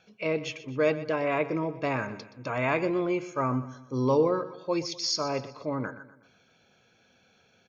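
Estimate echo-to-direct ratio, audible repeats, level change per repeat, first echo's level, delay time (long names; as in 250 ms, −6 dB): −14.0 dB, 3, −7.0 dB, −15.0 dB, 123 ms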